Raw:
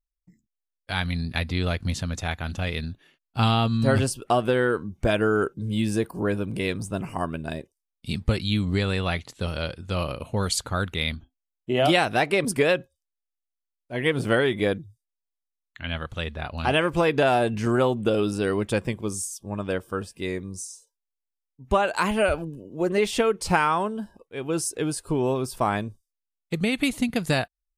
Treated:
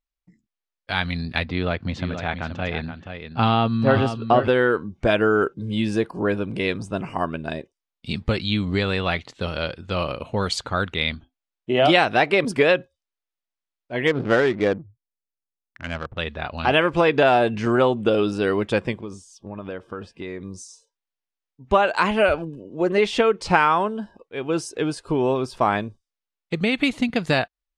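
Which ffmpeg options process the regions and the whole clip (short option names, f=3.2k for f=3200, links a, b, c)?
-filter_complex "[0:a]asettb=1/sr,asplit=3[a][b][c];[a]atrim=end=1.454[d];[b]atrim=start=1.45:end=4.48,asetpts=PTS-STARTPTS,afade=t=in:d=0.004:c=qsin,afade=t=out:st=3.026:d=0.004:c=qsin,highpass=78,aemphasis=mode=reproduction:type=75fm,aecho=1:1:477:0.376,atrim=end_sample=133623[e];[c]atrim=start=4.476[f];[d][e]acrossfade=d=0.004:c1=hsin:c2=qsin[g];[g][f]acrossfade=d=0.004:c1=qsin:c2=hsin,asettb=1/sr,asplit=3[h][i][j];[h]atrim=end=14.074[k];[i]atrim=start=14.07:end=16.18,asetpts=PTS-STARTPTS,afade=t=in:d=0.004:c=qsin,afade=t=out:st=2.106:d=0.004:c=qsin,equalizer=f=3.6k:t=o:w=1.4:g=-6,adynamicsmooth=sensitivity=5.5:basefreq=550[l];[j]atrim=start=16.176[m];[k][l]acrossfade=d=0.004:c1=hsin:c2=qsin[n];[n][m]acrossfade=d=0.004:c1=qsin:c2=hsin,asettb=1/sr,asplit=3[o][p][q];[o]atrim=end=18.994[r];[p]atrim=start=18.99:end=20.42,asetpts=PTS-STARTPTS,afade=t=in:d=0.004:c=qsin,afade=t=out:st=1.426:d=0.004:c=qsin,acompressor=threshold=-30dB:ratio=6:attack=3.2:release=140:knee=1:detection=peak,aemphasis=mode=reproduction:type=50kf[s];[q]atrim=start=20.416[t];[r][s]acrossfade=d=0.004:c1=hsin:c2=qsin[u];[u][t]acrossfade=d=0.004:c1=qsin:c2=hsin,lowpass=4.5k,lowshelf=f=160:g=-8,volume=4.5dB"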